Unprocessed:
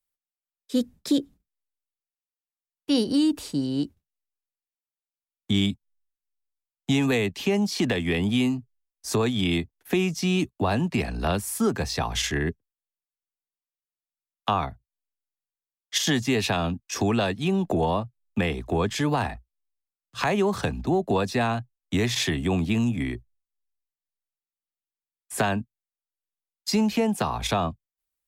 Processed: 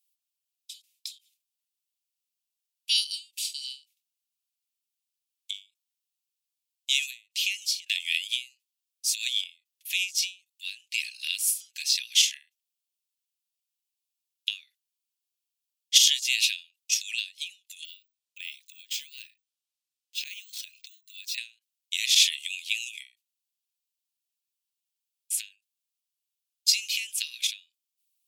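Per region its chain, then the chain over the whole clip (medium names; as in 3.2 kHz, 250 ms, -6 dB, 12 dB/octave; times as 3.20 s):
17.85–21.38 s: hum notches 50/100/150/200/250/300 Hz + compression 4:1, threshold -33 dBFS + careless resampling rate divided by 2×, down filtered, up hold
whole clip: steep high-pass 2.5 kHz 48 dB/octave; endings held to a fixed fall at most 210 dB/s; trim +8.5 dB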